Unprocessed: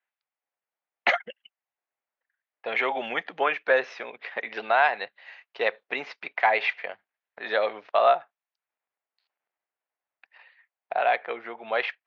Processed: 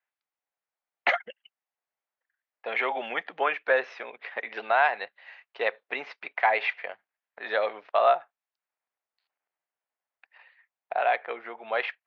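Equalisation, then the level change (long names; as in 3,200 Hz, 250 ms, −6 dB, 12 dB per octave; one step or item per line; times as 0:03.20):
low-shelf EQ 250 Hz −10 dB
high-shelf EQ 5,000 Hz −11 dB
0.0 dB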